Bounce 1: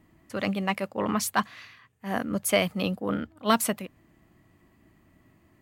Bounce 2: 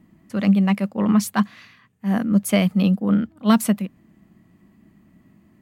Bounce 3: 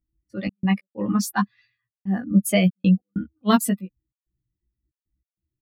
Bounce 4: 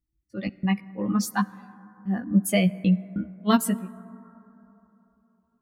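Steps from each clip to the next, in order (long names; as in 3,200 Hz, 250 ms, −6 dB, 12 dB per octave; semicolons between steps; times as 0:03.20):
parametric band 200 Hz +14 dB 0.73 octaves
spectral dynamics exaggerated over time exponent 2; gate pattern "xxx.x.xxxxxx.x" 95 BPM −60 dB; double-tracking delay 16 ms −3 dB; level +1.5 dB
dense smooth reverb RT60 3.5 s, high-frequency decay 0.25×, DRR 18 dB; level −2.5 dB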